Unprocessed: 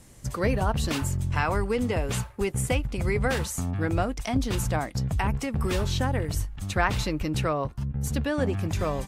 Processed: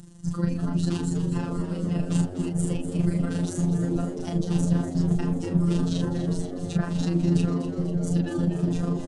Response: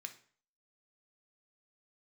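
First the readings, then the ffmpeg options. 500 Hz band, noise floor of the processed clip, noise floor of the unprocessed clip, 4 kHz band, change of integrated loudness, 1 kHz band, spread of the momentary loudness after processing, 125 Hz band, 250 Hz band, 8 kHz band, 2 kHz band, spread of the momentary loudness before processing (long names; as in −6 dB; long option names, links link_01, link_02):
−3.5 dB, −34 dBFS, −46 dBFS, −6.5 dB, +1.5 dB, −10.0 dB, 5 LU, +2.5 dB, +6.0 dB, −5.0 dB, −12.0 dB, 4 LU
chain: -filter_complex "[0:a]acompressor=mode=upward:threshold=-47dB:ratio=2.5,alimiter=limit=-17dB:level=0:latency=1:release=287,acrossover=split=320|3000[link_01][link_02][link_03];[link_02]acompressor=threshold=-31dB:ratio=6[link_04];[link_01][link_04][link_03]amix=inputs=3:normalize=0,equalizer=frequency=2200:width=6:gain=-14,asplit=2[link_05][link_06];[link_06]adelay=33,volume=-3dB[link_07];[link_05][link_07]amix=inputs=2:normalize=0,tremolo=f=25:d=0.571,highpass=46,lowshelf=frequency=320:width_type=q:width=1.5:gain=10,aresample=22050,aresample=44100,afftfilt=real='hypot(re,im)*cos(PI*b)':imag='0':win_size=1024:overlap=0.75,asplit=8[link_08][link_09][link_10][link_11][link_12][link_13][link_14][link_15];[link_09]adelay=246,afreqshift=92,volume=-10.5dB[link_16];[link_10]adelay=492,afreqshift=184,volume=-14.8dB[link_17];[link_11]adelay=738,afreqshift=276,volume=-19.1dB[link_18];[link_12]adelay=984,afreqshift=368,volume=-23.4dB[link_19];[link_13]adelay=1230,afreqshift=460,volume=-27.7dB[link_20];[link_14]adelay=1476,afreqshift=552,volume=-32dB[link_21];[link_15]adelay=1722,afreqshift=644,volume=-36.3dB[link_22];[link_08][link_16][link_17][link_18][link_19][link_20][link_21][link_22]amix=inputs=8:normalize=0"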